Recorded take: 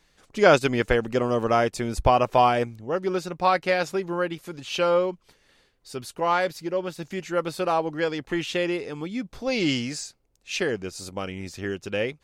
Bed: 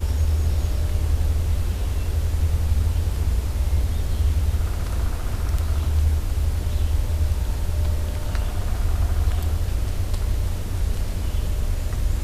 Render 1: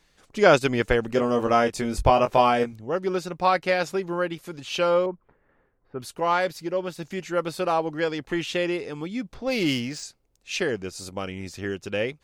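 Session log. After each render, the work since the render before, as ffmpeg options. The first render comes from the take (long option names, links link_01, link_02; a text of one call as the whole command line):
ffmpeg -i in.wav -filter_complex "[0:a]asettb=1/sr,asplit=3[link_01][link_02][link_03];[link_01]atrim=end=1.074[link_04];[link_02]atrim=start=1.07:end=2.73,asetpts=PTS-STARTPTS,afade=type=in:duration=0.004:curve=qsin,afade=type=out:start_time=1.656:duration=0.004:curve=qsin,asplit=2[link_05][link_06];[link_06]adelay=21,volume=-6dB[link_07];[link_05][link_07]amix=inputs=2:normalize=0,atrim=end_sample=73206[link_08];[link_03]atrim=start=2.726[link_09];[link_04][link_08]acrossfade=duration=0.004:curve1=hsin:curve2=qsin[link_10];[link_10][link_09]acrossfade=duration=0.004:curve1=qsin:curve2=hsin,asettb=1/sr,asplit=3[link_11][link_12][link_13];[link_11]atrim=end=5.064[link_14];[link_12]atrim=start=5.06:end=6,asetpts=PTS-STARTPTS,afade=type=in:duration=0.004:curve=qsin,afade=type=out:start_time=0.936:duration=0.004:curve=qsin,lowpass=frequency=1600:width=0.5412,lowpass=frequency=1600:width=1.3066[link_15];[link_13]atrim=start=5.996[link_16];[link_14][link_15]acrossfade=duration=0.004:curve1=hsin:curve2=qsin[link_17];[link_17][link_16]acrossfade=duration=0.004:curve1=qsin:curve2=hsin,asettb=1/sr,asplit=3[link_18][link_19][link_20];[link_18]atrim=end=9.344[link_21];[link_19]atrim=start=9.34:end=10.03,asetpts=PTS-STARTPTS,afade=type=in:duration=0.004:curve=qsin,afade=type=out:start_time=0.686:duration=0.004:curve=qsin,adynamicsmooth=sensitivity=6:basefreq=3900[link_22];[link_20]atrim=start=10.026[link_23];[link_21][link_22]acrossfade=duration=0.004:curve1=hsin:curve2=qsin[link_24];[link_24][link_23]acrossfade=duration=0.004:curve1=qsin:curve2=hsin" out.wav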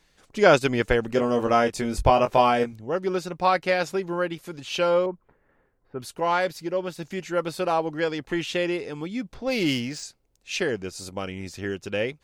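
ffmpeg -i in.wav -af "bandreject=frequency=1200:width=25" out.wav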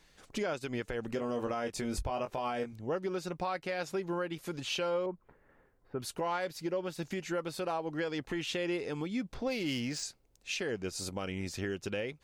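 ffmpeg -i in.wav -af "acompressor=threshold=-34dB:ratio=2,alimiter=level_in=1dB:limit=-24dB:level=0:latency=1:release=145,volume=-1dB" out.wav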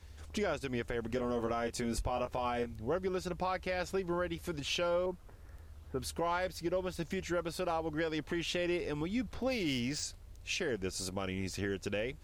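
ffmpeg -i in.wav -i bed.wav -filter_complex "[1:a]volume=-30dB[link_01];[0:a][link_01]amix=inputs=2:normalize=0" out.wav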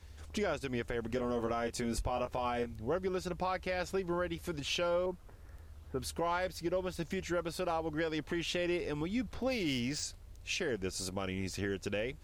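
ffmpeg -i in.wav -af anull out.wav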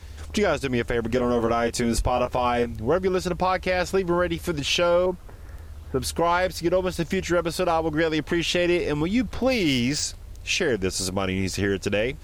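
ffmpeg -i in.wav -af "volume=12dB" out.wav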